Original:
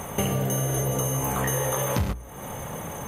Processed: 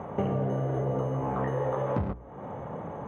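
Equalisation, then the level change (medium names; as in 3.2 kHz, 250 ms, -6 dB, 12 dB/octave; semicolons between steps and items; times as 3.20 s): high-pass 150 Hz 6 dB/octave; low-pass 1 kHz 12 dB/octave; 0.0 dB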